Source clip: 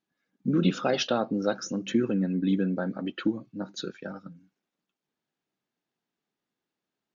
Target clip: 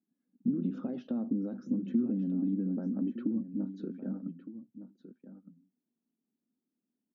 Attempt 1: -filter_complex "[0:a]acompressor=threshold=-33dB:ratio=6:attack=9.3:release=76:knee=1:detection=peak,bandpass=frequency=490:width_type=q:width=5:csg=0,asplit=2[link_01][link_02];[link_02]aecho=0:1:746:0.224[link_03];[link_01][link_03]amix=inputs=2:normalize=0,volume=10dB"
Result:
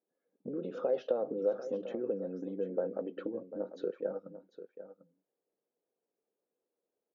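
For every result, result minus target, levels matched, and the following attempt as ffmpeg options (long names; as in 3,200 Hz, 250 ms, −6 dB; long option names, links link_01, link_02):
500 Hz band +15.0 dB; echo 466 ms early
-filter_complex "[0:a]acompressor=threshold=-33dB:ratio=6:attack=9.3:release=76:knee=1:detection=peak,bandpass=frequency=240:width_type=q:width=5:csg=0,asplit=2[link_01][link_02];[link_02]aecho=0:1:746:0.224[link_03];[link_01][link_03]amix=inputs=2:normalize=0,volume=10dB"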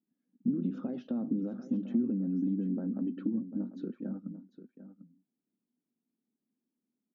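echo 466 ms early
-filter_complex "[0:a]acompressor=threshold=-33dB:ratio=6:attack=9.3:release=76:knee=1:detection=peak,bandpass=frequency=240:width_type=q:width=5:csg=0,asplit=2[link_01][link_02];[link_02]aecho=0:1:1212:0.224[link_03];[link_01][link_03]amix=inputs=2:normalize=0,volume=10dB"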